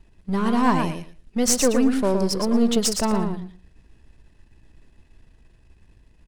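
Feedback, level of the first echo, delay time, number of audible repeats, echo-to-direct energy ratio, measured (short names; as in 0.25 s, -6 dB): 16%, -5.5 dB, 0.115 s, 2, -5.5 dB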